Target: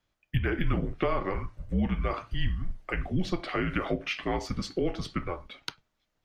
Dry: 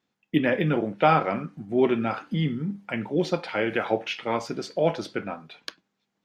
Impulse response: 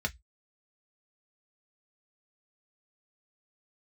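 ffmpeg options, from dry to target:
-filter_complex "[0:a]acrossover=split=180[link_01][link_02];[link_02]acompressor=threshold=-25dB:ratio=6[link_03];[link_01][link_03]amix=inputs=2:normalize=0,afreqshift=-180"

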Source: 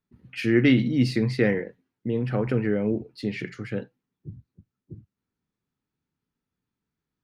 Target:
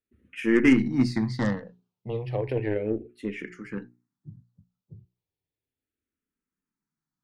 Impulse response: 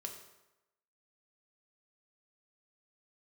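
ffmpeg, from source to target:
-filter_complex "[0:a]aeval=exprs='0.398*(cos(1*acos(clip(val(0)/0.398,-1,1)))-cos(1*PI/2))+0.0562*(cos(4*acos(clip(val(0)/0.398,-1,1)))-cos(4*PI/2))+0.0224*(cos(6*acos(clip(val(0)/0.398,-1,1)))-cos(6*PI/2))+0.0224*(cos(7*acos(clip(val(0)/0.398,-1,1)))-cos(7*PI/2))':channel_layout=same,bandreject=frequency=60:width_type=h:width=6,bandreject=frequency=120:width_type=h:width=6,bandreject=frequency=180:width_type=h:width=6,bandreject=frequency=240:width_type=h:width=6,bandreject=frequency=300:width_type=h:width=6,bandreject=frequency=360:width_type=h:width=6,bandreject=frequency=420:width_type=h:width=6,asplit=2[link_01][link_02];[link_02]afreqshift=-0.34[link_03];[link_01][link_03]amix=inputs=2:normalize=1,volume=1.5dB"

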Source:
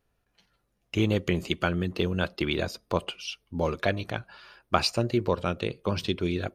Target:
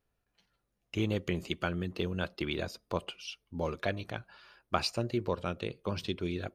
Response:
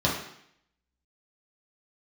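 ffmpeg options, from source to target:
-af "volume=-6.5dB"

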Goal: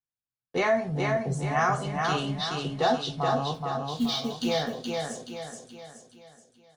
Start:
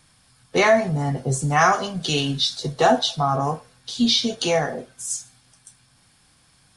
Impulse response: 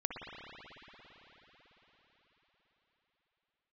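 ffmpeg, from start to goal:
-filter_complex "[0:a]agate=range=-36dB:threshold=-48dB:ratio=16:detection=peak,lowpass=frequency=3100:poles=1,asettb=1/sr,asplit=3[link_01][link_02][link_03];[link_01]atrim=end=3.544[link_04];[link_02]atrim=start=3.54:end=4.47,asetpts=PTS-STARTPTS,afade=type=in:duration=0.004:curve=qsin,afade=type=out:start_time=0.926:duration=0.004:curve=qsin,acrusher=bits=6:mode=log:mix=0:aa=0.000001[link_05];[link_03]atrim=start=4.466[link_06];[link_04][link_05]acrossfade=duration=0.004:curve1=hsin:curve2=qsin[link_07];[link_07][link_06]acrossfade=duration=0.004:curve1=qsin:curve2=hsin,aecho=1:1:425|850|1275|1700|2125|2550:0.668|0.301|0.135|0.0609|0.0274|0.0123,volume=-7.5dB"

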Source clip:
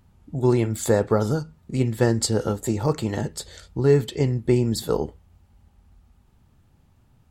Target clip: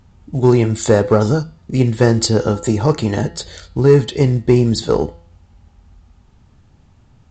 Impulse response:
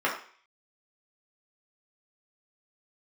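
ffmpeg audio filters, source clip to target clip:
-af "acontrast=63,bandreject=frequency=169.4:width_type=h:width=4,bandreject=frequency=338.8:width_type=h:width=4,bandreject=frequency=508.2:width_type=h:width=4,bandreject=frequency=677.6:width_type=h:width=4,bandreject=frequency=847:width_type=h:width=4,bandreject=frequency=1016.4:width_type=h:width=4,bandreject=frequency=1185.8:width_type=h:width=4,bandreject=frequency=1355.2:width_type=h:width=4,bandreject=frequency=1524.6:width_type=h:width=4,bandreject=frequency=1694:width_type=h:width=4,bandreject=frequency=1863.4:width_type=h:width=4,bandreject=frequency=2032.8:width_type=h:width=4,bandreject=frequency=2202.2:width_type=h:width=4,bandreject=frequency=2371.6:width_type=h:width=4,bandreject=frequency=2541:width_type=h:width=4,bandreject=frequency=2710.4:width_type=h:width=4,bandreject=frequency=2879.8:width_type=h:width=4,bandreject=frequency=3049.2:width_type=h:width=4,bandreject=frequency=3218.6:width_type=h:width=4,bandreject=frequency=3388:width_type=h:width=4,bandreject=frequency=3557.4:width_type=h:width=4,bandreject=frequency=3726.8:width_type=h:width=4,bandreject=frequency=3896.2:width_type=h:width=4,bandreject=frequency=4065.6:width_type=h:width=4,bandreject=frequency=4235:width_type=h:width=4,bandreject=frequency=4404.4:width_type=h:width=4,bandreject=frequency=4573.8:width_type=h:width=4,bandreject=frequency=4743.2:width_type=h:width=4,bandreject=frequency=4912.6:width_type=h:width=4,volume=2dB" -ar 16000 -c:a pcm_alaw

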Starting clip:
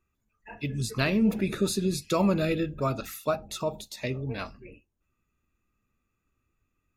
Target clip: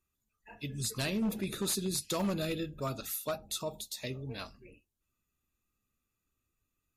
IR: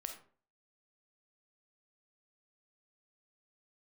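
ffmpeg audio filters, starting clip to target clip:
-af "aexciter=amount=3.1:drive=3:freq=3200,aeval=exprs='0.126*(abs(mod(val(0)/0.126+3,4)-2)-1)':channel_layout=same,volume=-7.5dB" -ar 32000 -c:a libmp3lame -b:a 56k

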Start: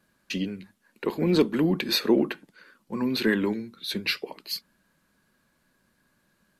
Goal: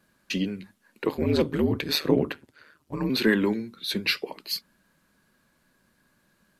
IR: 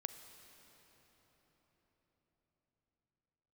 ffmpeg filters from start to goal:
-filter_complex "[0:a]asettb=1/sr,asplit=3[link_01][link_02][link_03];[link_01]atrim=end=1.084[link_04];[link_02]atrim=start=1.08:end=3.1,asetpts=PTS-STARTPTS,afade=type=in:duration=0.004:curve=qsin,afade=type=out:start_time=2.016:duration=0.004:curve=qsin,aeval=exprs='val(0)*sin(2*PI*75*n/s)':channel_layout=same[link_05];[link_03]atrim=start=3.096[link_06];[link_04][link_05]acrossfade=duration=0.004:curve1=hsin:curve2=qsin[link_07];[link_07][link_06]acrossfade=duration=0.004:curve1=qsin:curve2=hsin,volume=2dB"

